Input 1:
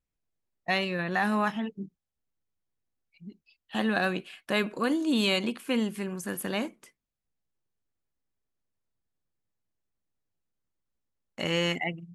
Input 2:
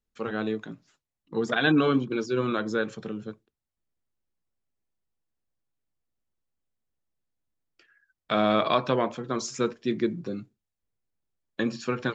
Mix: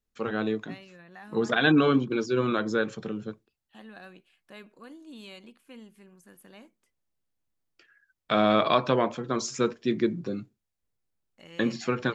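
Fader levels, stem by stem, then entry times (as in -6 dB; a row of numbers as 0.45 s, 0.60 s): -20.0 dB, +1.0 dB; 0.00 s, 0.00 s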